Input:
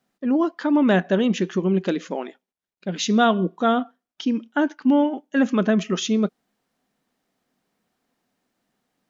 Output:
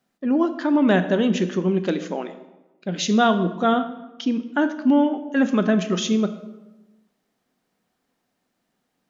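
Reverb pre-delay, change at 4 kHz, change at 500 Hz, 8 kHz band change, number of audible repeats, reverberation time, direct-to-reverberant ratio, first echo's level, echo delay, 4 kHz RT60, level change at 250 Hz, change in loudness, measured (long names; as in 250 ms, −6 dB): 16 ms, +0.5 dB, +0.5 dB, can't be measured, no echo audible, 1.1 s, 10.0 dB, no echo audible, no echo audible, 0.75 s, +0.5 dB, +0.5 dB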